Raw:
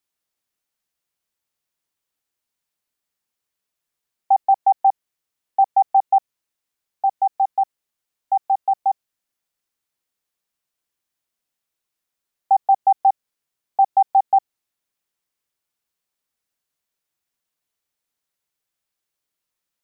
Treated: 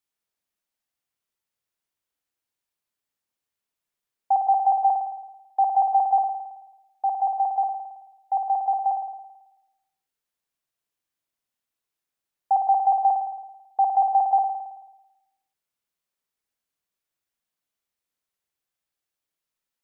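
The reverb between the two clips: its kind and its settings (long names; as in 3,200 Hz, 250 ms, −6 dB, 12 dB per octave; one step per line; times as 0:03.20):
spring reverb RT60 1 s, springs 54 ms, chirp 35 ms, DRR 3.5 dB
level −5 dB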